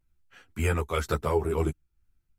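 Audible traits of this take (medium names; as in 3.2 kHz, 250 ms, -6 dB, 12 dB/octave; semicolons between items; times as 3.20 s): tremolo triangle 2 Hz, depth 40%; a shimmering, thickened sound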